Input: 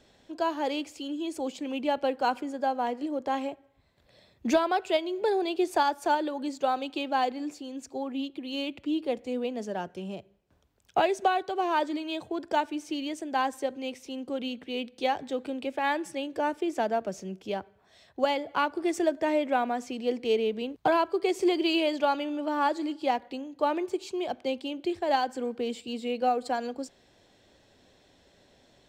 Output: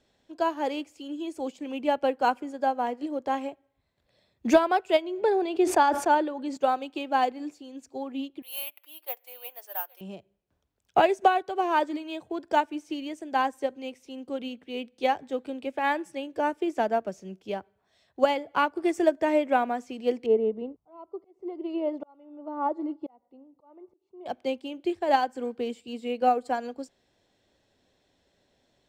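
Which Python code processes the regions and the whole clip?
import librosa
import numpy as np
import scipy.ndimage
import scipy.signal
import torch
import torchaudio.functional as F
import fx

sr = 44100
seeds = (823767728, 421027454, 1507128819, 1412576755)

y = fx.chain(x, sr, fx.high_shelf(hz=6400.0, db=-11.5),
    fx.sustainer(db_per_s=65.0), at=(5.02, 6.57))
y = fx.chain(y, sr, fx.highpass(hz=730.0, slope=24),
    fx.echo_single(ms=817, db=-17.0),
    fx.resample_bad(factor=3, down='filtered', up='zero_stuff'), at=(8.42, 10.01))
y = fx.chain(y, sr, fx.auto_swell(attack_ms=788.0),
    fx.savgol(points=65), at=(20.26, 24.26))
y = fx.dynamic_eq(y, sr, hz=4000.0, q=1.9, threshold_db=-51.0, ratio=4.0, max_db=-6)
y = fx.upward_expand(y, sr, threshold_db=-47.0, expansion=1.5)
y = y * librosa.db_to_amplitude(5.5)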